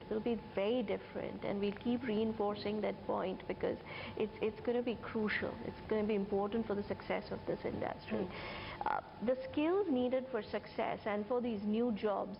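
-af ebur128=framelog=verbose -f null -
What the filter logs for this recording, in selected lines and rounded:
Integrated loudness:
  I:         -37.8 LUFS
  Threshold: -47.8 LUFS
Loudness range:
  LRA:         2.1 LU
  Threshold: -57.9 LUFS
  LRA low:   -38.8 LUFS
  LRA high:  -36.7 LUFS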